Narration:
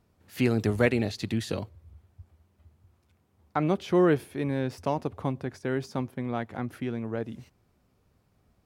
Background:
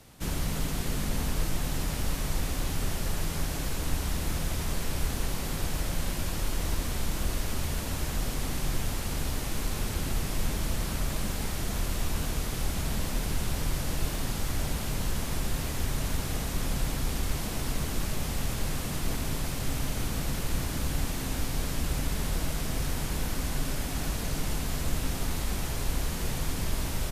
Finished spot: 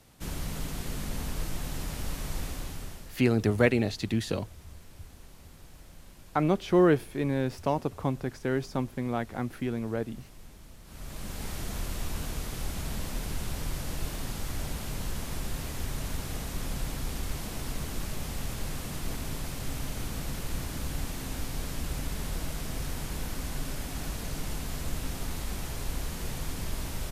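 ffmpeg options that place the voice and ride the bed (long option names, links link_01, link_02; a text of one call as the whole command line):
ffmpeg -i stem1.wav -i stem2.wav -filter_complex "[0:a]adelay=2800,volume=0.5dB[link_01];[1:a]volume=12dB,afade=type=out:start_time=2.43:duration=0.74:silence=0.158489,afade=type=in:start_time=10.84:duration=0.67:silence=0.149624[link_02];[link_01][link_02]amix=inputs=2:normalize=0" out.wav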